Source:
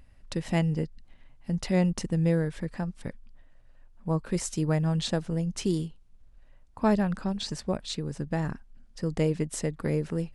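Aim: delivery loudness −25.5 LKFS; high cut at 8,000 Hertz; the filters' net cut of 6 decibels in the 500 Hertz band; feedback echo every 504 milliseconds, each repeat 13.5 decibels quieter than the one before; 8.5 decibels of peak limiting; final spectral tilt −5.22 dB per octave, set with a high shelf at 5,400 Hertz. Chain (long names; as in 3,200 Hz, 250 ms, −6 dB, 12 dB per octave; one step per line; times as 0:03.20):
low-pass filter 8,000 Hz
parametric band 500 Hz −7.5 dB
high-shelf EQ 5,400 Hz +7.5 dB
brickwall limiter −21.5 dBFS
repeating echo 504 ms, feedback 21%, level −13.5 dB
level +7 dB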